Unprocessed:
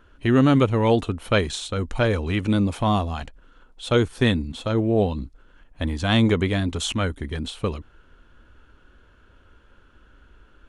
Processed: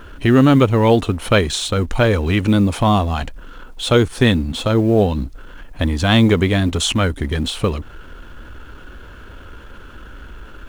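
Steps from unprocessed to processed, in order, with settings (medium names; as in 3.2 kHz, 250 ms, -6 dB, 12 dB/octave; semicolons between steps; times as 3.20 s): companding laws mixed up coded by mu; in parallel at +1 dB: compression, threshold -30 dBFS, peak gain reduction 16.5 dB; on the sum: trim +3.5 dB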